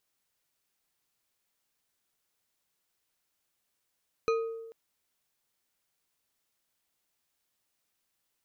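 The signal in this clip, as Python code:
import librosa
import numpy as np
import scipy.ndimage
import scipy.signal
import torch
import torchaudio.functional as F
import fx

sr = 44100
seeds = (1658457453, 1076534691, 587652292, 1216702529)

y = fx.strike_glass(sr, length_s=0.44, level_db=-23.0, body='bar', hz=454.0, decay_s=1.16, tilt_db=6, modes=5)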